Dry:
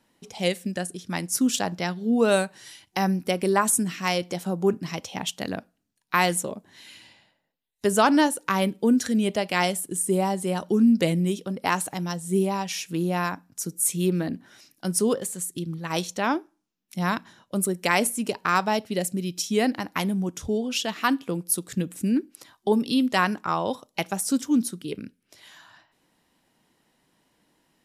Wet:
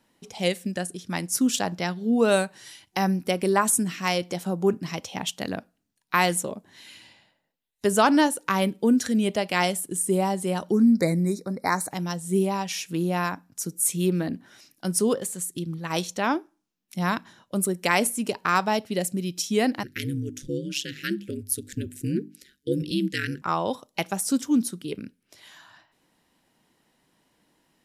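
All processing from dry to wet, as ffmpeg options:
-filter_complex "[0:a]asettb=1/sr,asplit=3[a][b][c];[a]atrim=end=10.714[d];[b]atrim=start=10.71:end=11.91,asetpts=PTS-STARTPTS,afade=t=in:d=0.004:c=qsin,afade=t=out:st=1.196:d=0.004:c=qsin,deesser=0.35,asuperstop=centerf=3000:order=12:qfactor=2.1[e];[c]atrim=start=11.906[f];[d][e]acrossfade=d=0.004:c1=hsin:c2=qsin[g];[g][f]acrossfade=d=0.004:c1=qsin:c2=hsin,asettb=1/sr,asplit=3[h][i][j];[h]atrim=end=19.834[k];[i]atrim=start=19.83:end=23.42,asetpts=PTS-STARTPTS,afade=t=in:d=0.004:c=qsin,afade=t=out:st=3.586:d=0.004:c=qsin,asuperstop=centerf=830:order=12:qfactor=0.78,aeval=exprs='val(0)*sin(2*PI*69*n/s)':c=same,bandreject=f=50:t=h:w=6,bandreject=f=100:t=h:w=6,bandreject=f=150:t=h:w=6,bandreject=f=200:t=h:w=6,bandreject=f=250:t=h:w=6,bandreject=f=300:t=h:w=6[l];[j]atrim=start=23.416[m];[k][l]acrossfade=d=0.004:c1=hsin:c2=qsin[n];[n][m]acrossfade=d=0.004:c1=qsin:c2=hsin"

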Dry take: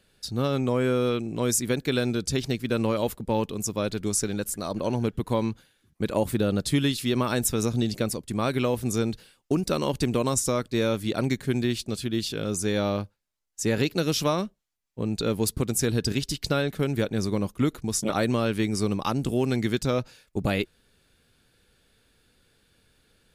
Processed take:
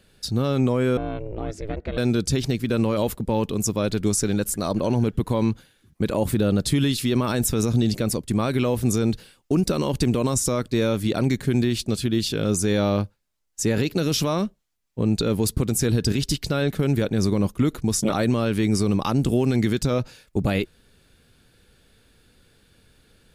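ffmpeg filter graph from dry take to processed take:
-filter_complex "[0:a]asettb=1/sr,asplit=3[a][b][c];[a]atrim=end=0.974[d];[b]atrim=start=0.97:end=1.98,asetpts=PTS-STARTPTS,afade=t=in:d=0.004:c=qsin,afade=t=out:st=1.006:d=0.004:c=qsin,lowpass=2.3k,aeval=exprs='val(0)*sin(2*PI*210*n/s)':c=same,acompressor=threshold=-36dB:ratio=2:attack=3.2:release=140:knee=1:detection=peak[e];[c]atrim=start=1.976[f];[d][e]acrossfade=d=0.004:c1=hsin:c2=qsin[g];[g][f]acrossfade=d=0.004:c1=qsin:c2=hsin,alimiter=limit=-18dB:level=0:latency=1:release=29,lowshelf=f=370:g=4,volume=4.5dB"

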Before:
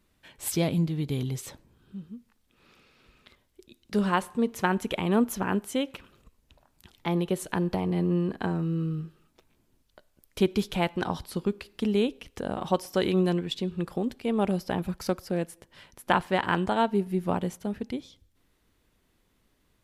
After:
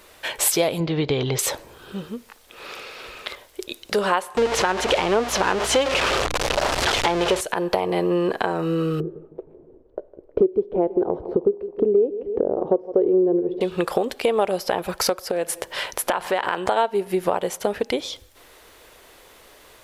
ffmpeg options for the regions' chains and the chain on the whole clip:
-filter_complex "[0:a]asettb=1/sr,asplit=3[a][b][c];[a]atrim=end=0.804[d];[b]atrim=start=0.8:end=1.39,asetpts=PTS-STARTPTS,afade=t=in:d=0.004:c=qsin,afade=t=out:st=0.586:d=0.004:c=qsin,lowpass=f=5.3k:w=0.5412,lowpass=f=5.3k:w=1.3066,bass=f=250:g=3,treble=f=4k:g=-5[e];[c]atrim=start=1.386[f];[d][e]acrossfade=d=0.004:c1=hsin:c2=qsin[g];[g][f]acrossfade=d=0.004:c1=qsin:c2=hsin,asettb=1/sr,asplit=3[h][i][j];[h]atrim=end=4.374[k];[i]atrim=start=4.37:end=7.41,asetpts=PTS-STARTPTS,afade=t=in:d=0.004:c=qsin,afade=t=out:st=3.036:d=0.004:c=qsin,aeval=exprs='val(0)+0.5*0.0596*sgn(val(0))':c=same,lowpass=5.6k,aeval=exprs='val(0)+0.02*(sin(2*PI*60*n/s)+sin(2*PI*2*60*n/s)/2+sin(2*PI*3*60*n/s)/3+sin(2*PI*4*60*n/s)/4+sin(2*PI*5*60*n/s)/5)':c=same[l];[j]atrim=start=7.406[m];[k][l]acrossfade=d=0.004:c1=hsin:c2=qsin[n];[n][m]acrossfade=d=0.004:c1=qsin:c2=hsin,asettb=1/sr,asplit=3[o][p][q];[o]atrim=end=9.004[r];[p]atrim=start=9:end=13.61,asetpts=PTS-STARTPTS,afade=t=in:d=0.004:c=qsin,afade=t=out:st=4.606:d=0.004:c=qsin,lowpass=f=390:t=q:w=2.9,aecho=1:1:157|314|471|628:0.112|0.0606|0.0327|0.0177,atrim=end_sample=203301[s];[q]atrim=start=13.606[t];[r][s]acrossfade=d=0.004:c1=hsin:c2=qsin[u];[u][t]acrossfade=d=0.004:c1=qsin:c2=hsin,asettb=1/sr,asplit=3[v][w][x];[v]atrim=end=15.314[y];[w]atrim=start=15.31:end=16.66,asetpts=PTS-STARTPTS,afade=t=in:d=0.004:c=qsin,afade=t=out:st=1.346:d=0.004:c=qsin,bandreject=f=50:t=h:w=6,bandreject=f=100:t=h:w=6,bandreject=f=150:t=h:w=6,bandreject=f=200:t=h:w=6,acompressor=threshold=-35dB:ratio=3:attack=3.2:release=140:knee=1:detection=peak[z];[x]atrim=start=16.656[aa];[y][z]acrossfade=d=0.004:c1=hsin:c2=qsin[ab];[ab][aa]acrossfade=d=0.004:c1=qsin:c2=hsin,lowshelf=f=330:t=q:w=1.5:g=-13.5,acompressor=threshold=-44dB:ratio=4,alimiter=level_in=29dB:limit=-1dB:release=50:level=0:latency=1,volume=-5.5dB"

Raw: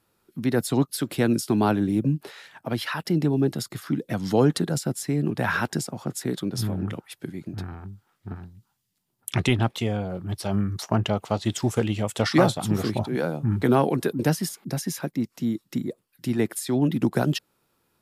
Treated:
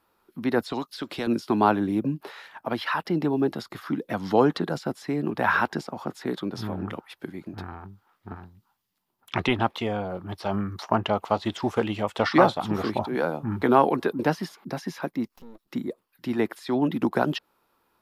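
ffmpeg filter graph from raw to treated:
-filter_complex "[0:a]asettb=1/sr,asplit=3[a][b][c];[a]atrim=end=0.664[d];[b]atrim=start=0.66:end=1.27,asetpts=PTS-STARTPTS,afade=t=in:d=0.004:c=qsin,afade=t=out:st=0.606:d=0.004:c=qsin,equalizer=f=5.9k:t=o:w=2.3:g=8.5,acrossover=split=680|3900[e][f][g];[e]acompressor=threshold=-28dB:ratio=4[h];[f]acompressor=threshold=-39dB:ratio=4[i];[g]acompressor=threshold=-33dB:ratio=4[j];[h][i][j]amix=inputs=3:normalize=0[k];[c]atrim=start=1.266[l];[d][k]acrossfade=d=0.004:c1=hsin:c2=qsin[m];[m][l]acrossfade=d=0.004:c1=qsin:c2=hsin,asettb=1/sr,asplit=3[n][o][p];[n]atrim=end=15.284[q];[o]atrim=start=15.28:end=15.68,asetpts=PTS-STARTPTS,afade=t=in:d=0.004:c=qsin,afade=t=out:st=0.396:d=0.004:c=qsin,equalizer=f=1k:w=0.47:g=-9.5,acompressor=threshold=-43dB:ratio=2.5:attack=3.2:release=140:knee=1:detection=peak,aeval=exprs='max(val(0),0)':c=same[r];[p]atrim=start=15.676[s];[q][r]acrossfade=d=0.004:c1=hsin:c2=qsin[t];[t][s]acrossfade=d=0.004:c1=qsin:c2=hsin,acrossover=split=5400[u][v];[v]acompressor=threshold=-49dB:ratio=4:attack=1:release=60[w];[u][w]amix=inputs=2:normalize=0,equalizer=f=125:t=o:w=1:g=-10,equalizer=f=1k:t=o:w=1:g=7,equalizer=f=8k:t=o:w=1:g=-8"

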